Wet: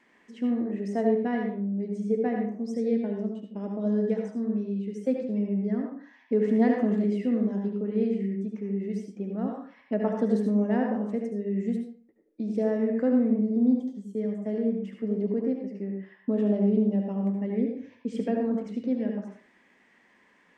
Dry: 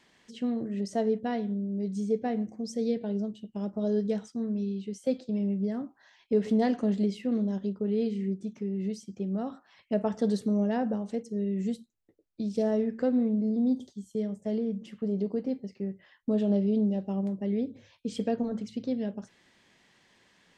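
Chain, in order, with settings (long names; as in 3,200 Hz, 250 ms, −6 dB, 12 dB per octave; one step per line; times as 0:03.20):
octave-band graphic EQ 125/250/500/1,000/2,000/4,000 Hz −5/+11/+5/+5/+11/−6 dB
on a send: convolution reverb RT60 0.45 s, pre-delay 68 ms, DRR 2 dB
on the sum: level −8 dB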